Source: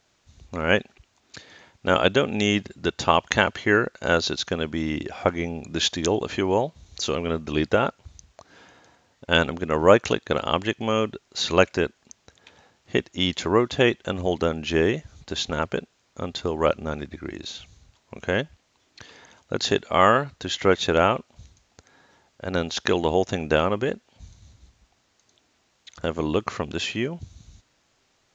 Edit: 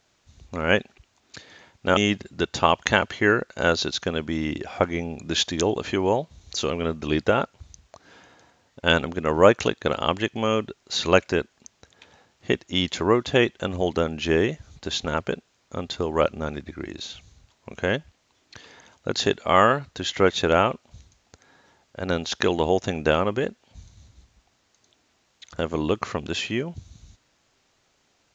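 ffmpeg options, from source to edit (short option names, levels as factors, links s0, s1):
-filter_complex "[0:a]asplit=2[s0][s1];[s0]atrim=end=1.972[s2];[s1]atrim=start=2.418[s3];[s2][s3]acrossfade=d=0.004:c1=hsin:c2=hsin"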